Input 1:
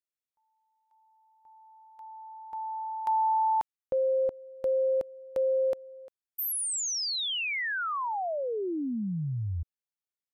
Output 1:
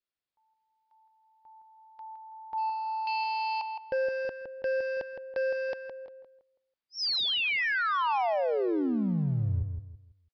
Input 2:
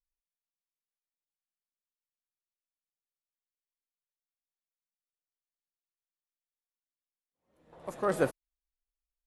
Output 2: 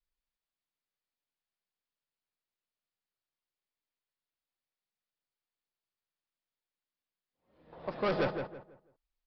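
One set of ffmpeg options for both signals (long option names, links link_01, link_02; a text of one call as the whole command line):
ffmpeg -i in.wav -filter_complex "[0:a]adynamicequalizer=threshold=0.0112:dfrequency=880:dqfactor=2.4:tfrequency=880:tqfactor=2.4:attack=5:release=100:ratio=0.333:range=2:mode=boostabove:tftype=bell,aresample=11025,volume=29.5dB,asoftclip=hard,volume=-29.5dB,aresample=44100,asplit=2[link_01][link_02];[link_02]adelay=164,lowpass=frequency=2200:poles=1,volume=-6dB,asplit=2[link_03][link_04];[link_04]adelay=164,lowpass=frequency=2200:poles=1,volume=0.3,asplit=2[link_05][link_06];[link_06]adelay=164,lowpass=frequency=2200:poles=1,volume=0.3,asplit=2[link_07][link_08];[link_08]adelay=164,lowpass=frequency=2200:poles=1,volume=0.3[link_09];[link_01][link_03][link_05][link_07][link_09]amix=inputs=5:normalize=0,volume=3dB" out.wav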